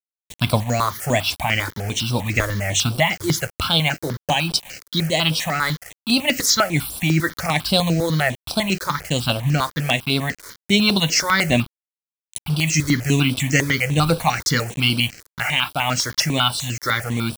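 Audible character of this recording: a quantiser's noise floor 6-bit, dither none; notches that jump at a steady rate 10 Hz 740–6700 Hz

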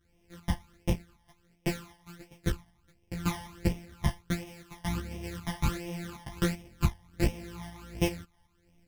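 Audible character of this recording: a buzz of ramps at a fixed pitch in blocks of 256 samples; phasing stages 12, 1.4 Hz, lowest notch 420–1400 Hz; tremolo saw up 2.6 Hz, depth 45%; a shimmering, thickened sound

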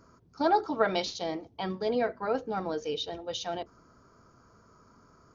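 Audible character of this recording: noise floor -61 dBFS; spectral tilt -2.5 dB/oct

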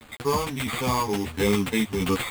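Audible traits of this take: aliases and images of a low sample rate 5700 Hz, jitter 0%; tremolo saw down 1.5 Hz, depth 40%; a quantiser's noise floor 8-bit, dither none; a shimmering, thickened sound

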